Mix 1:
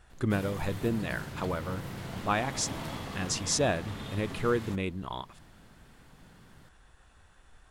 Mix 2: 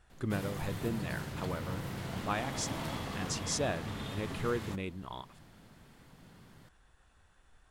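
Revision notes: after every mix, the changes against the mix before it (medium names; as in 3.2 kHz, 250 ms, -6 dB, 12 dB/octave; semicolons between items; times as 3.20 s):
speech -6.0 dB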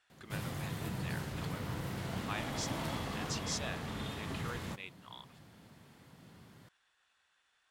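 speech: add band-pass filter 3.3 kHz, Q 0.81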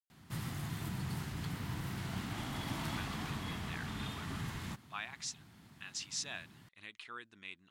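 speech: entry +2.65 s; master: add peaking EQ 520 Hz -12 dB 0.71 oct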